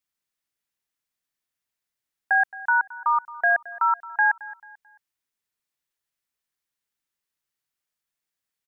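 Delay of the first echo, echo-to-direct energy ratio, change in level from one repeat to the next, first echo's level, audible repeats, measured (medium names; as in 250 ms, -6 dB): 220 ms, -18.0 dB, -9.0 dB, -18.5 dB, 2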